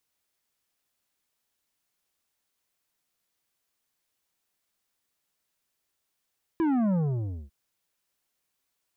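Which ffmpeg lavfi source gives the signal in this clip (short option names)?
-f lavfi -i "aevalsrc='0.0708*clip((0.9-t)/0.57,0,1)*tanh(2.99*sin(2*PI*340*0.9/log(65/340)*(exp(log(65/340)*t/0.9)-1)))/tanh(2.99)':d=0.9:s=44100"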